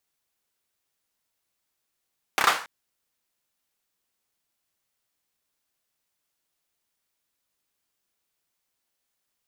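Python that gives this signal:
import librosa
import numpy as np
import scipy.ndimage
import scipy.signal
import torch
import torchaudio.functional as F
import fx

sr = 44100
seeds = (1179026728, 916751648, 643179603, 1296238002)

y = fx.drum_clap(sr, seeds[0], length_s=0.28, bursts=4, spacing_ms=30, hz=1200.0, decay_s=0.4)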